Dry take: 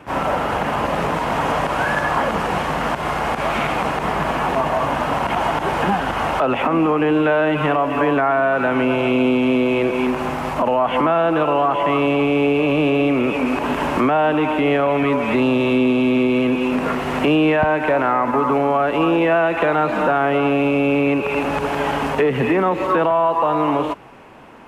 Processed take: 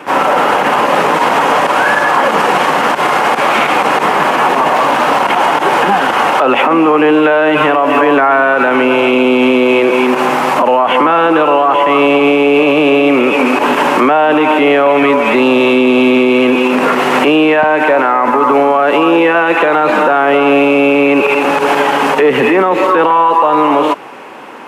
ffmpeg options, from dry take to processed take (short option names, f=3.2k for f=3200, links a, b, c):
-filter_complex "[0:a]asettb=1/sr,asplit=3[a][b][c];[a]atrim=end=4.754[d];[b]atrim=start=4.75:end=5.22,asetpts=PTS-STARTPTS,afade=t=in:d=0.004:c=qsin,afade=t=out:st=0.466:d=0.004:c=qsin,asoftclip=type=hard:threshold=-16dB[e];[c]atrim=start=5.216[f];[d][e]acrossfade=d=0.004:c1=hsin:c2=qsin[g];[g][f]acrossfade=d=0.004:c1=qsin:c2=hsin,highpass=310,bandreject=f=660:w=12,alimiter=level_in=14.5dB:limit=-1dB:release=50:level=0:latency=1,volume=-1dB"